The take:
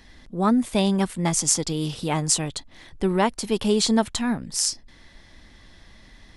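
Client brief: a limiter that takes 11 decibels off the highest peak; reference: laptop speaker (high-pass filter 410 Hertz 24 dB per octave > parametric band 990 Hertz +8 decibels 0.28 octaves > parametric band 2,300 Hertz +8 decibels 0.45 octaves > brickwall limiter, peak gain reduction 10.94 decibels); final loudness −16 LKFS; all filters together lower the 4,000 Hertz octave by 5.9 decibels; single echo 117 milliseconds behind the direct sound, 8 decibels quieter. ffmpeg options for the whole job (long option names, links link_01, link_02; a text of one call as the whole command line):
ffmpeg -i in.wav -af "equalizer=frequency=4000:width_type=o:gain=-9,alimiter=limit=-15dB:level=0:latency=1,highpass=frequency=410:width=0.5412,highpass=frequency=410:width=1.3066,equalizer=frequency=990:width_type=o:width=0.28:gain=8,equalizer=frequency=2300:width_type=o:width=0.45:gain=8,aecho=1:1:117:0.398,volume=17dB,alimiter=limit=-5.5dB:level=0:latency=1" out.wav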